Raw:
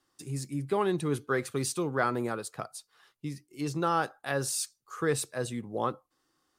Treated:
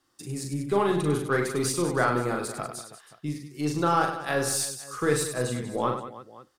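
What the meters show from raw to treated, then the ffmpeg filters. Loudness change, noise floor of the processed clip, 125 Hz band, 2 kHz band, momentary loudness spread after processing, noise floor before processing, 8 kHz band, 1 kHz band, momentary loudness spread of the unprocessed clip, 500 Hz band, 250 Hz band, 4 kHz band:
+4.5 dB, -62 dBFS, +4.5 dB, +5.0 dB, 13 LU, -77 dBFS, +4.5 dB, +4.5 dB, 12 LU, +4.5 dB, +4.5 dB, +5.0 dB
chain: -af "aecho=1:1:40|100|190|325|527.5:0.631|0.398|0.251|0.158|0.1,aeval=exprs='0.237*(cos(1*acos(clip(val(0)/0.237,-1,1)))-cos(1*PI/2))+0.00473*(cos(8*acos(clip(val(0)/0.237,-1,1)))-cos(8*PI/2))':c=same,volume=2.5dB"

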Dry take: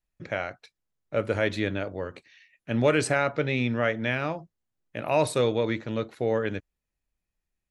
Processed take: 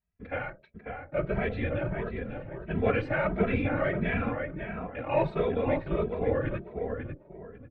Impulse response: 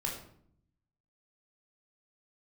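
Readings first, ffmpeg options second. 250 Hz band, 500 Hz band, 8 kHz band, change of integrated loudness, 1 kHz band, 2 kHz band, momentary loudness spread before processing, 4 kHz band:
-1.5 dB, -2.5 dB, under -35 dB, -3.5 dB, -2.5 dB, -3.5 dB, 13 LU, -12.0 dB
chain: -filter_complex "[0:a]equalizer=f=100:t=o:w=1.1:g=6,bandreject=f=60:t=h:w=6,bandreject=f=120:t=h:w=6,bandreject=f=180:t=h:w=6,bandreject=f=240:t=h:w=6,bandreject=f=300:t=h:w=6,bandreject=f=360:t=h:w=6,bandreject=f=420:t=h:w=6,bandreject=f=480:t=h:w=6,bandreject=f=540:t=h:w=6,asplit=2[a][b];[b]adelay=544,lowpass=f=2k:p=1,volume=-5dB,asplit=2[c][d];[d]adelay=544,lowpass=f=2k:p=1,volume=0.28,asplit=2[e][f];[f]adelay=544,lowpass=f=2k:p=1,volume=0.28,asplit=2[g][h];[h]adelay=544,lowpass=f=2k:p=1,volume=0.28[i];[c][e][g][i]amix=inputs=4:normalize=0[j];[a][j]amix=inputs=2:normalize=0,asoftclip=type=tanh:threshold=-11.5dB,afftfilt=real='hypot(re,im)*cos(2*PI*random(0))':imag='hypot(re,im)*sin(2*PI*random(1))':win_size=512:overlap=0.75,lowpass=f=2.7k:w=0.5412,lowpass=f=2.7k:w=1.3066,asplit=2[k][l];[l]adelay=2.7,afreqshift=1.5[m];[k][m]amix=inputs=2:normalize=1,volume=6dB"

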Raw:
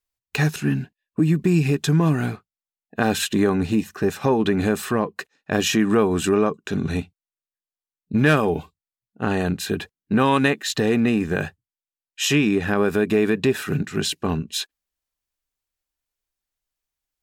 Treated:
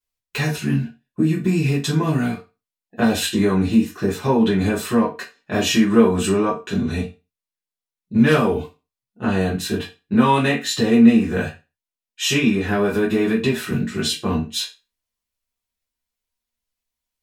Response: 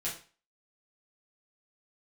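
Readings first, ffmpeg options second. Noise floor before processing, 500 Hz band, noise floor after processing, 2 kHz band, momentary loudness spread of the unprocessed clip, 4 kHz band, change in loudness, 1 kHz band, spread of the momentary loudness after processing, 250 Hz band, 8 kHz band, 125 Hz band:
under -85 dBFS, +1.0 dB, under -85 dBFS, 0.0 dB, 10 LU, +2.5 dB, +2.0 dB, +1.5 dB, 10 LU, +3.5 dB, +1.5 dB, +0.5 dB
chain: -filter_complex "[1:a]atrim=start_sample=2205,asetrate=61740,aresample=44100[a];[0:a][a]afir=irnorm=-1:irlink=0,volume=1.5dB"

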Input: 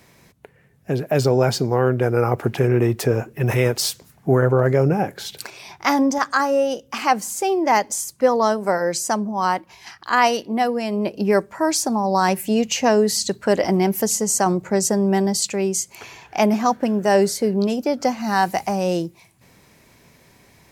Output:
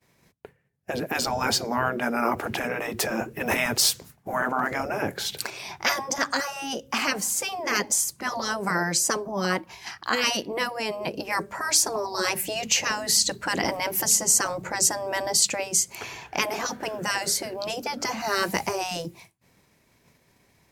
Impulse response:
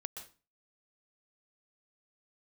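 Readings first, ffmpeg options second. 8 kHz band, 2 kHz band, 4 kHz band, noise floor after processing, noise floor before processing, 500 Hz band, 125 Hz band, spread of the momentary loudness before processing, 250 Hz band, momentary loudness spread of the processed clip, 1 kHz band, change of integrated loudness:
+2.0 dB, 0.0 dB, +2.0 dB, -64 dBFS, -54 dBFS, -11.0 dB, -16.0 dB, 7 LU, -12.0 dB, 9 LU, -7.5 dB, -5.0 dB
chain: -af "agate=range=-33dB:threshold=-43dB:ratio=3:detection=peak,afftfilt=real='re*lt(hypot(re,im),0.355)':imag='im*lt(hypot(re,im),0.355)':win_size=1024:overlap=0.75,volume=2.5dB"

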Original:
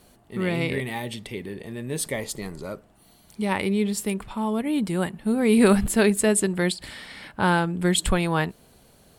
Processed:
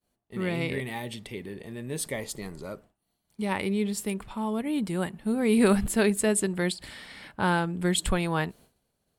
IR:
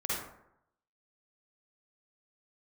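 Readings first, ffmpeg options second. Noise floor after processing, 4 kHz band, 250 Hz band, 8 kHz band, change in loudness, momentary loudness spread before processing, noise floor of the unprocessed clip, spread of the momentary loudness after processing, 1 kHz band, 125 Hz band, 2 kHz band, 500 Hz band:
-79 dBFS, -4.0 dB, -4.0 dB, -4.0 dB, -4.0 dB, 16 LU, -57 dBFS, 16 LU, -4.0 dB, -4.0 dB, -4.0 dB, -4.0 dB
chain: -af "agate=range=-33dB:threshold=-43dB:ratio=3:detection=peak,volume=-4dB"

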